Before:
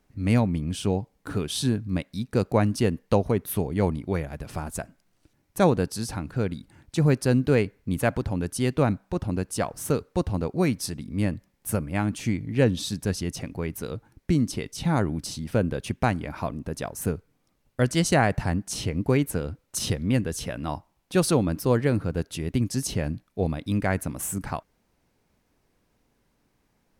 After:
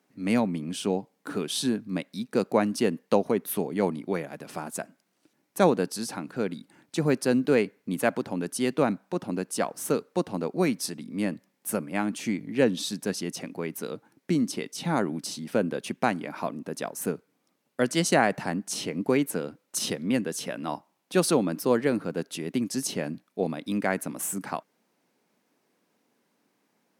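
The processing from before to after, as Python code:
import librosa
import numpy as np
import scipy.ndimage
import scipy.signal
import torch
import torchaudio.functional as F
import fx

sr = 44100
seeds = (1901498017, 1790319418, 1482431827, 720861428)

y = scipy.signal.sosfilt(scipy.signal.butter(4, 190.0, 'highpass', fs=sr, output='sos'), x)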